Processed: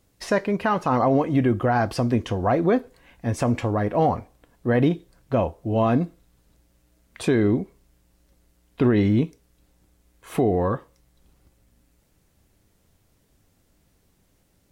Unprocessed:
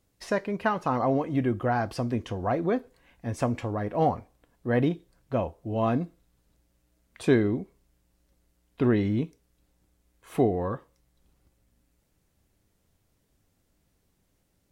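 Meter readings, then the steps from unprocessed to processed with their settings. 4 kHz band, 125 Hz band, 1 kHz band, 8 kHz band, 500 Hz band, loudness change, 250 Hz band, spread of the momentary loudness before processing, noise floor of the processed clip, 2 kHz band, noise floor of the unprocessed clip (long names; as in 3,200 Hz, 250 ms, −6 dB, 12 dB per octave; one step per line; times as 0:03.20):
+6.0 dB, +5.5 dB, +5.0 dB, can't be measured, +4.5 dB, +5.0 dB, +5.5 dB, 12 LU, −65 dBFS, +4.0 dB, −72 dBFS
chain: brickwall limiter −18 dBFS, peak gain reduction 8.5 dB
level +7 dB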